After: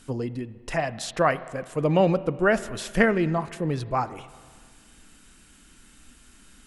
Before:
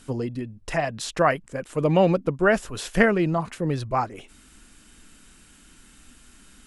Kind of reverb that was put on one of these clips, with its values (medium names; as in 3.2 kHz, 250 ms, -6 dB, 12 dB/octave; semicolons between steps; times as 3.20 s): spring tank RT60 1.8 s, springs 31/40/50 ms, chirp 50 ms, DRR 15.5 dB; trim -1.5 dB